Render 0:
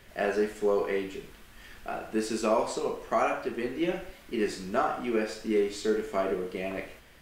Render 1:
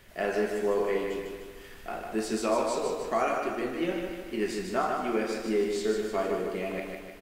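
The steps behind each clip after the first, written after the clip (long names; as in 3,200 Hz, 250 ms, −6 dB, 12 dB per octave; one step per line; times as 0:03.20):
high-shelf EQ 9,200 Hz +3.5 dB
on a send: repeating echo 152 ms, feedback 52%, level −5 dB
on the sum: level −1.5 dB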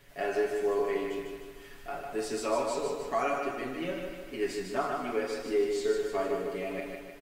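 comb filter 7.1 ms, depth 91%
level −5 dB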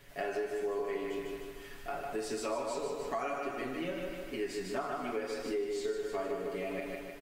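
downward compressor 3 to 1, threshold −35 dBFS, peak gain reduction 9.5 dB
level +1 dB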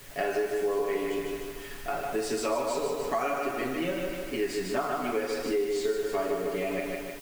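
background noise white −58 dBFS
level +6.5 dB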